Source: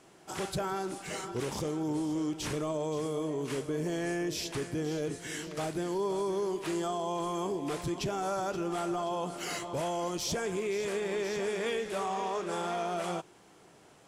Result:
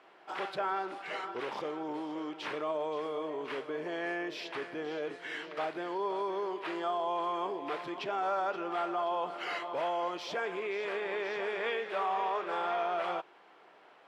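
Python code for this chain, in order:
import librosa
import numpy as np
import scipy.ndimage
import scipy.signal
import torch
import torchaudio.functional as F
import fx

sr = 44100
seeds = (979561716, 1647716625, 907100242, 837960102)

y = scipy.signal.sosfilt(scipy.signal.bessel(2, 810.0, 'highpass', norm='mag', fs=sr, output='sos'), x)
y = fx.air_absorb(y, sr, metres=390.0)
y = y * librosa.db_to_amplitude(7.0)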